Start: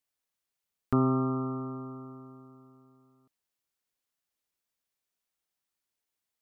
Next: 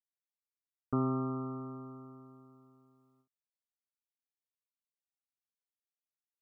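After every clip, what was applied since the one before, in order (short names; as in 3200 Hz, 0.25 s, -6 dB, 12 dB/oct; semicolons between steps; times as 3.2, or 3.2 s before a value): gate with hold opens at -57 dBFS; gain -6 dB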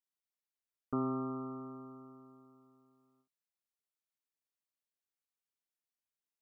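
bell 110 Hz -9 dB 0.71 oct; gain -2 dB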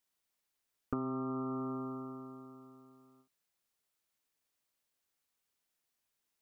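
compressor 8:1, threshold -43 dBFS, peak gain reduction 13 dB; gain +9.5 dB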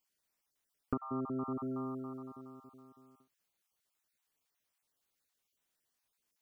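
random spectral dropouts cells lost 24%; gain +1.5 dB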